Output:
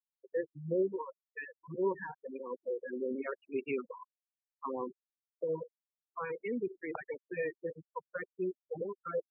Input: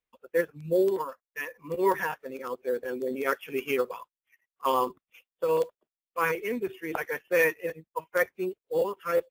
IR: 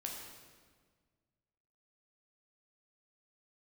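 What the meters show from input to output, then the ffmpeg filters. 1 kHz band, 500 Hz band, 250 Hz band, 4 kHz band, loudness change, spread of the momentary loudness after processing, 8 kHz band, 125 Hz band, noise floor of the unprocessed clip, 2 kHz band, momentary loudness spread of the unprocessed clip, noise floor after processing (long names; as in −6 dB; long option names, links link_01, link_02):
−13.0 dB, −8.5 dB, −5.0 dB, below −20 dB, −9.0 dB, 11 LU, below −30 dB, −4.0 dB, below −85 dBFS, −13.5 dB, 11 LU, below −85 dBFS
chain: -filter_complex "[0:a]acrossover=split=380[link_01][link_02];[link_02]acompressor=threshold=-36dB:ratio=4[link_03];[link_01][link_03]amix=inputs=2:normalize=0,afftfilt=real='re*gte(hypot(re,im),0.0316)':imag='im*gte(hypot(re,im),0.0316)':win_size=1024:overlap=0.75,afftfilt=real='re*(1-between(b*sr/1024,210*pow(1700/210,0.5+0.5*sin(2*PI*1.7*pts/sr))/1.41,210*pow(1700/210,0.5+0.5*sin(2*PI*1.7*pts/sr))*1.41))':imag='im*(1-between(b*sr/1024,210*pow(1700/210,0.5+0.5*sin(2*PI*1.7*pts/sr))/1.41,210*pow(1700/210,0.5+0.5*sin(2*PI*1.7*pts/sr))*1.41))':win_size=1024:overlap=0.75,volume=-2.5dB"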